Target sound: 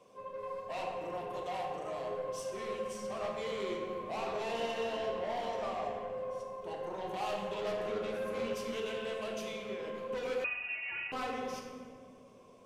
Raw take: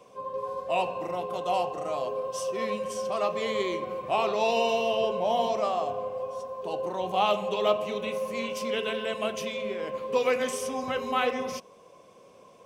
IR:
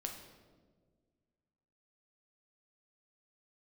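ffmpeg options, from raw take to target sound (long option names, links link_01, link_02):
-filter_complex "[0:a]asettb=1/sr,asplit=3[link_01][link_02][link_03];[link_01]atrim=end=7.774[link_04];[link_02]atrim=start=7.77:end=8.53,asetpts=PTS-STARTPTS,afade=type=in:duration=0.004:curve=qsin,afade=type=out:start_time=0.756:duration=0.004:curve=qsin,equalizer=frequency=380:width_type=o:width=1.4:gain=10[link_05];[link_03]atrim=start=8.526[link_06];[link_04][link_05]acrossfade=duration=0.004:curve1=hsin:curve2=qsin[link_07];[link_07][link_06]acrossfade=duration=0.004:curve1=qsin:curve2=hsin,asoftclip=type=tanh:threshold=-28dB[link_08];[1:a]atrim=start_sample=2205,asetrate=27342,aresample=44100[link_09];[link_08][link_09]afir=irnorm=-1:irlink=0,asettb=1/sr,asplit=3[link_10][link_11][link_12];[link_10]atrim=end=10.444[link_13];[link_11]atrim=start=10.44:end=11.12,asetpts=PTS-STARTPTS,afade=type=in:duration=0.004:curve=qsin,afade=type=out:start_time=0.676:duration=0.004:curve=qsin,lowpass=frequency=2600:width_type=q:width=0.5098,lowpass=frequency=2600:width_type=q:width=0.6013,lowpass=frequency=2600:width_type=q:width=0.9,lowpass=frequency=2600:width_type=q:width=2.563,afreqshift=-3000[link_14];[link_12]atrim=start=11.116[link_15];[link_13][link_14]acrossfade=duration=0.004:curve1=hsin:curve2=qsin[link_16];[link_16][link_15]acrossfade=duration=0.004:curve1=qsin:curve2=hsin,volume=-7dB"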